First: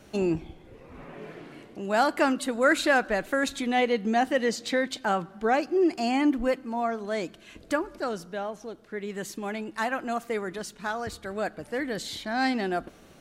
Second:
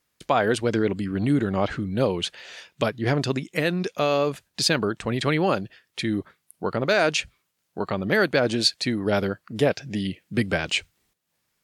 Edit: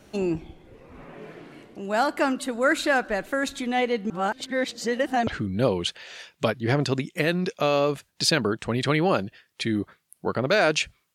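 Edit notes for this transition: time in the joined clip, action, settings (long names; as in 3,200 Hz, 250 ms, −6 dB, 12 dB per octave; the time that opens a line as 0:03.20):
first
0:04.10–0:05.27: reverse
0:05.27: continue with second from 0:01.65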